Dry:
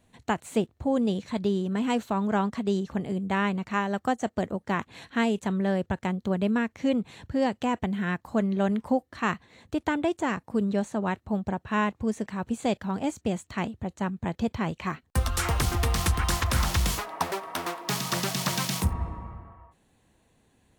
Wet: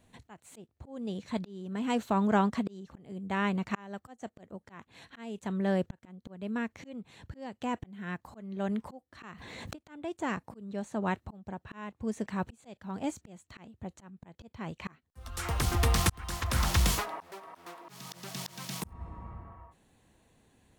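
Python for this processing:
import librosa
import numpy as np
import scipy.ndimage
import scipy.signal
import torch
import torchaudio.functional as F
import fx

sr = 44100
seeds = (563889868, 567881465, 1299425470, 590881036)

y = fx.auto_swell(x, sr, attack_ms=723.0)
y = fx.pre_swell(y, sr, db_per_s=21.0, at=(9.22, 9.75), fade=0.02)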